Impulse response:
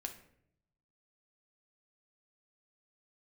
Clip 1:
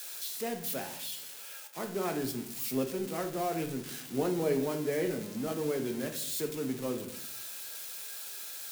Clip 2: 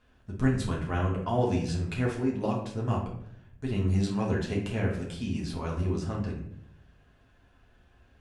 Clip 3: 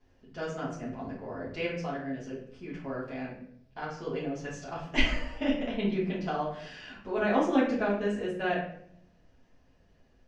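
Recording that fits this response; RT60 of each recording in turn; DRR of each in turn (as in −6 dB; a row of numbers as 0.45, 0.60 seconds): 1; 0.70, 0.70, 0.70 seconds; 4.0, −3.5, −8.0 decibels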